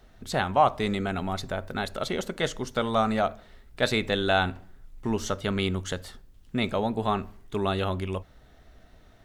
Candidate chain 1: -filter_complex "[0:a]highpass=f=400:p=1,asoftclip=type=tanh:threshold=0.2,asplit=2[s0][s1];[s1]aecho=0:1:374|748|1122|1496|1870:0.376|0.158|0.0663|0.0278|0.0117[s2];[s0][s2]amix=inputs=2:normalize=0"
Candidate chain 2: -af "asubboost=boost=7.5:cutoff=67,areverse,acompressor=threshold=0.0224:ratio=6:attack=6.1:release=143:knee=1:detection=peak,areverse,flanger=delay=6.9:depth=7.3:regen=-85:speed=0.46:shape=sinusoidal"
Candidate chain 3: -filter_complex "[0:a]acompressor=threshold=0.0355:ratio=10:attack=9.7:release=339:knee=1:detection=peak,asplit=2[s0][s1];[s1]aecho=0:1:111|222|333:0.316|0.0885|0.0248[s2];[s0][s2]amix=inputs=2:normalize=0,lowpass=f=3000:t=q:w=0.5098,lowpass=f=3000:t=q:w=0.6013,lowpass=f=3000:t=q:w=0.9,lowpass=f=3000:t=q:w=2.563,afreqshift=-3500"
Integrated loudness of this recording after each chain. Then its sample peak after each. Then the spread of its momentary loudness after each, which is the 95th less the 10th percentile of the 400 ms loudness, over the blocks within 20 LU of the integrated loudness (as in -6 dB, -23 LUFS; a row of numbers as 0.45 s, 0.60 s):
-30.5 LUFS, -43.5 LUFS, -32.0 LUFS; -12.5 dBFS, -25.5 dBFS, -17.0 dBFS; 11 LU, 10 LU, 13 LU